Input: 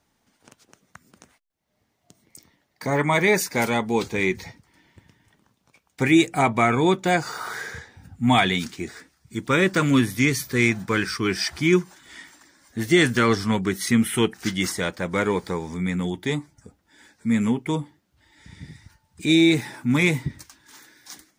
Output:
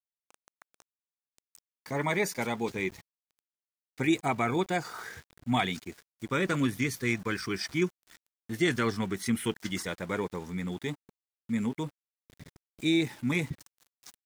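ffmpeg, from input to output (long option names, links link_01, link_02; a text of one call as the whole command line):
ffmpeg -i in.wav -af "aeval=exprs='val(0)*gte(abs(val(0)),0.0126)':channel_layout=same,atempo=1.5,volume=-8.5dB" out.wav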